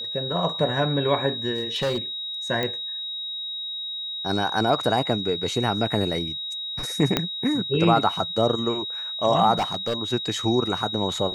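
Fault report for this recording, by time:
tone 3800 Hz -29 dBFS
1.54–1.98 clipped -20.5 dBFS
2.63 pop -13 dBFS
7.17 pop -5 dBFS
9.55–9.94 clipped -20 dBFS

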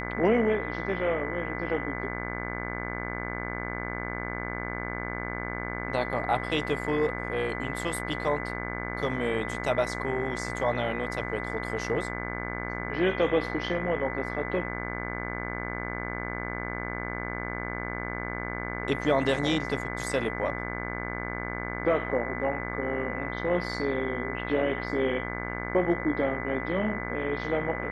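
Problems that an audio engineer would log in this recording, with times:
buzz 60 Hz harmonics 37 -35 dBFS
tone 2000 Hz -37 dBFS

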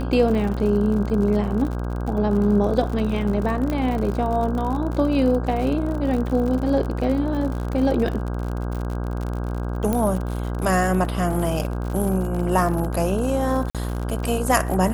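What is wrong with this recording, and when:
buzz 60 Hz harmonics 27 -26 dBFS
crackle 59/s -28 dBFS
3.7 pop -14 dBFS
9.93 pop -10 dBFS
13.7–13.75 gap 47 ms

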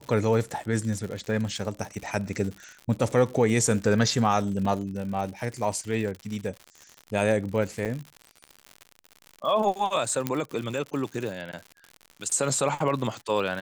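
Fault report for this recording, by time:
crackle 110/s -33 dBFS
4.65 gap 4 ms
7.85–7.86 gap 7.1 ms
10.27 pop -11 dBFS

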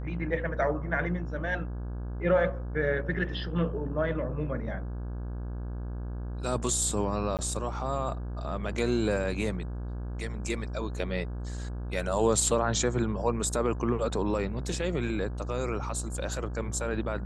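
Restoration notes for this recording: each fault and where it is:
buzz 60 Hz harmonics 28 -35 dBFS
7.37–7.39 gap 18 ms

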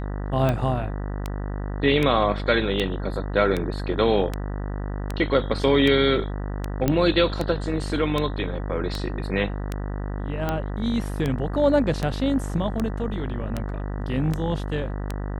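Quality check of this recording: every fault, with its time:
buzz 50 Hz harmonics 39 -29 dBFS
tick 78 rpm -12 dBFS
6.88 pop -8 dBFS

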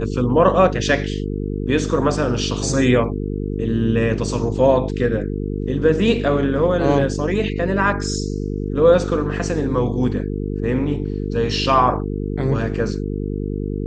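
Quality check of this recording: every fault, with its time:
buzz 50 Hz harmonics 9 -24 dBFS

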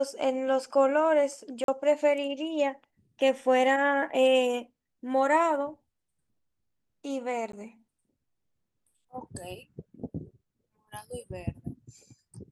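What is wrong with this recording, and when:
1.64–1.68 gap 42 ms
7.52–7.53 gap 13 ms

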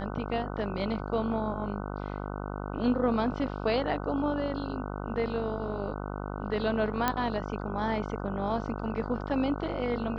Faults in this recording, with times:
buzz 50 Hz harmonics 30 -36 dBFS
7.08 pop -11 dBFS

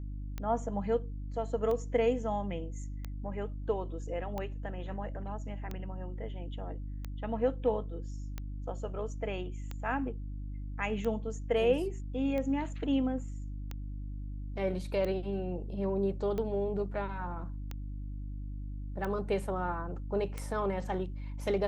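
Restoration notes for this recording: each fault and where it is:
hum 50 Hz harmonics 6 -39 dBFS
tick 45 rpm -24 dBFS

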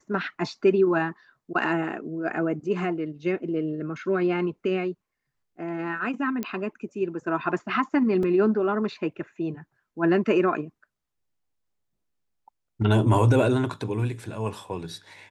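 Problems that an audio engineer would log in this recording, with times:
6.43 pop -15 dBFS
8.23 gap 2.4 ms

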